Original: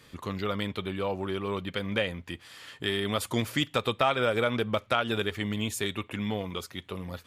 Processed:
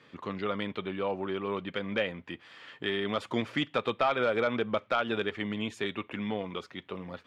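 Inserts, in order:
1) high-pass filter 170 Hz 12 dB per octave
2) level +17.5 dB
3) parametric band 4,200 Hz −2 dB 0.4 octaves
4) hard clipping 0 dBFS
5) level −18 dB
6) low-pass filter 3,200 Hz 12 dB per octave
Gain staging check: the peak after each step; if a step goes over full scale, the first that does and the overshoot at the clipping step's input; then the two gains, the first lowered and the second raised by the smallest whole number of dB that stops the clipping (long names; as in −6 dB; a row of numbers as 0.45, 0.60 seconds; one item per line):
−9.5, +8.0, +8.0, 0.0, −18.0, −17.5 dBFS
step 2, 8.0 dB
step 2 +9.5 dB, step 5 −10 dB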